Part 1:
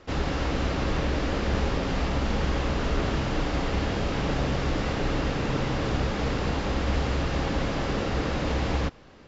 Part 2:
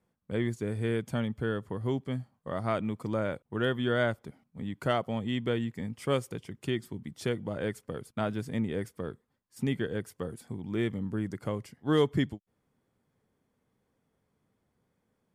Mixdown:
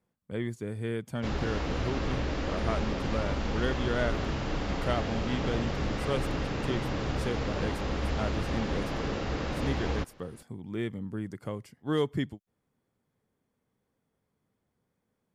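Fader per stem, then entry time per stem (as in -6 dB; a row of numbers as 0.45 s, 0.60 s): -5.0 dB, -3.0 dB; 1.15 s, 0.00 s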